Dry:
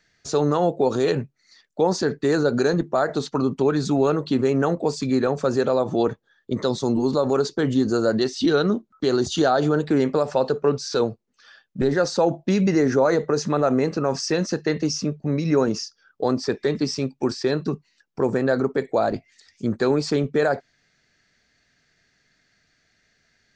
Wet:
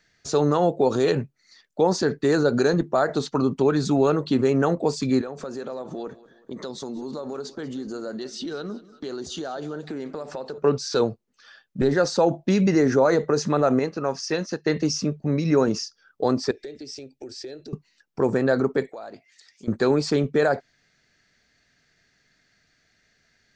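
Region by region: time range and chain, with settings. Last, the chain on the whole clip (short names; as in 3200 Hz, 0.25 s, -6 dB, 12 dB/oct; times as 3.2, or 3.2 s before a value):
5.21–10.58 bell 110 Hz -15 dB 0.4 oct + compressor 3:1, threshold -33 dBFS + feedback echo 0.187 s, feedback 47%, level -19 dB
13.79–14.66 low shelf 400 Hz -5 dB + notch 7700 Hz, Q 5.9 + upward expander, over -39 dBFS
16.51–17.73 compressor 5:1, threshold -33 dBFS + fixed phaser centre 440 Hz, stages 4
18.89–19.68 HPF 570 Hz 6 dB/oct + compressor 3:1, threshold -39 dBFS
whole clip: dry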